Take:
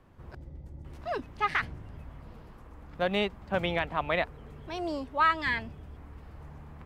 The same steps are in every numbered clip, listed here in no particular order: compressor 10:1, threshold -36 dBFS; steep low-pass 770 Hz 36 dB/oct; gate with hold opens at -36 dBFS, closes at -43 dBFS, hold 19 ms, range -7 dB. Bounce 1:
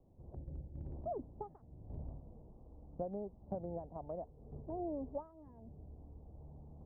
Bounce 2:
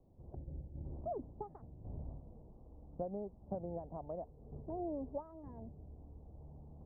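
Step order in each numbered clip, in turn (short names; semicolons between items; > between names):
compressor > steep low-pass > gate with hold; compressor > gate with hold > steep low-pass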